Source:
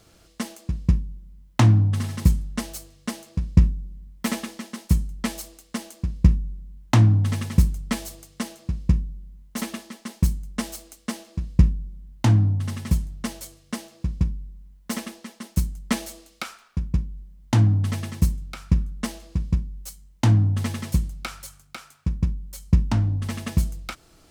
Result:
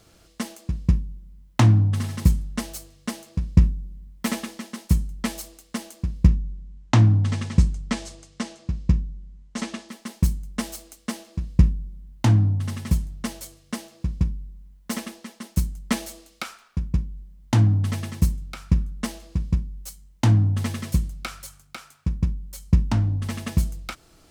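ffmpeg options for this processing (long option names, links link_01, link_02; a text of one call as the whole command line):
ffmpeg -i in.wav -filter_complex "[0:a]asettb=1/sr,asplit=3[link_01][link_02][link_03];[link_01]atrim=end=6.284[link_04];[link_02]atrim=start=6.28:end=9.89,asetpts=PTS-STARTPTS,afade=type=in:duration=0.004:curve=qsin,afade=type=out:start_time=3.606:duration=0.004:curve=qsin,lowpass=frequency=8000:width=0.5412,lowpass=frequency=8000:width=1.3066[link_05];[link_03]atrim=start=9.886[link_06];[link_04][link_05]acrossfade=duration=0.004:curve1=hsin:curve2=qsin[link_07];[link_07][link_06]acrossfade=duration=0.004:curve1=qsin:curve2=hsin,asettb=1/sr,asplit=3[link_08][link_09][link_10];[link_08]atrim=end=20.704[link_11];[link_09]atrim=start=20.7:end=21.43,asetpts=PTS-STARTPTS,afade=type=in:duration=0.004:curve=qsin,afade=type=out:start_time=0.726:duration=0.004:curve=qsin,asuperstop=centerf=880:order=4:qfactor=7.6[link_12];[link_10]atrim=start=21.426[link_13];[link_11][link_12]acrossfade=duration=0.004:curve1=hsin:curve2=qsin[link_14];[link_14][link_13]acrossfade=duration=0.004:curve1=qsin:curve2=hsin" out.wav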